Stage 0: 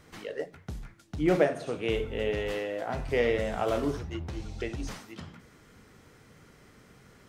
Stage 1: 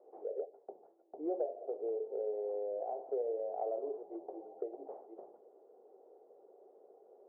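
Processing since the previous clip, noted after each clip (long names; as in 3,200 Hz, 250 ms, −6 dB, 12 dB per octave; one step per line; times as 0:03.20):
Chebyshev band-pass filter 380–770 Hz, order 3
downward compressor 3 to 1, threshold −41 dBFS, peak gain reduction 16 dB
level +3.5 dB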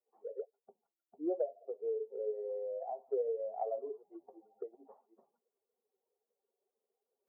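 spectral dynamics exaggerated over time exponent 2
level +4 dB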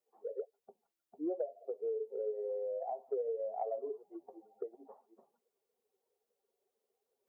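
downward compressor 2.5 to 1, threshold −38 dBFS, peak gain reduction 6.5 dB
level +3 dB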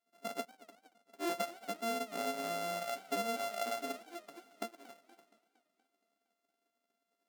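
samples sorted by size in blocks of 64 samples
linear-phase brick-wall high-pass 170 Hz
feedback echo with a swinging delay time 234 ms, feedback 56%, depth 209 cents, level −19 dB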